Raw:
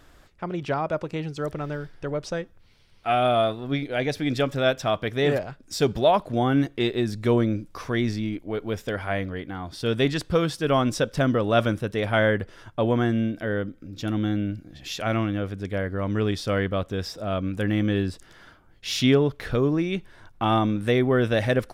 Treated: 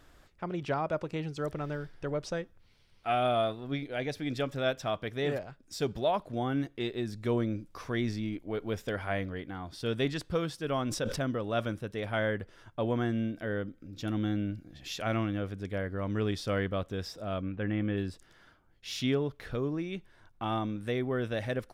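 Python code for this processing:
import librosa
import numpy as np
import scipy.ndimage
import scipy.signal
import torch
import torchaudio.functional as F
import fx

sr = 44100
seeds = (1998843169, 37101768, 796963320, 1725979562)

y = fx.sustainer(x, sr, db_per_s=59.0, at=(10.78, 11.31))
y = fx.lowpass(y, sr, hz=2900.0, slope=24, at=(17.41, 17.96), fade=0.02)
y = fx.rider(y, sr, range_db=4, speed_s=2.0)
y = y * 10.0 ** (-8.5 / 20.0)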